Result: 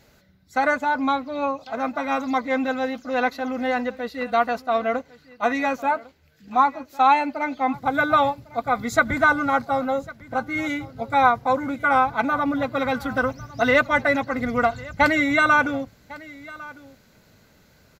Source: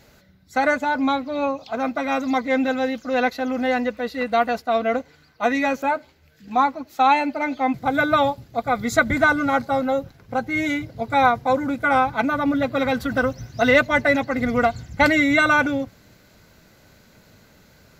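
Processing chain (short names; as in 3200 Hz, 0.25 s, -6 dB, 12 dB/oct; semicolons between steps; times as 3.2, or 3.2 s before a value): dynamic EQ 1100 Hz, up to +6 dB, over -32 dBFS, Q 1.5; echo 1.102 s -20.5 dB; gain -3.5 dB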